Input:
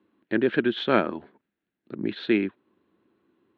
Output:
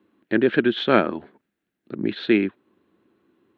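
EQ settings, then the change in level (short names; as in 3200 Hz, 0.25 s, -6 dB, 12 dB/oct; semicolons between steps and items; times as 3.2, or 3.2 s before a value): bell 970 Hz -2.5 dB 0.22 oct; +4.0 dB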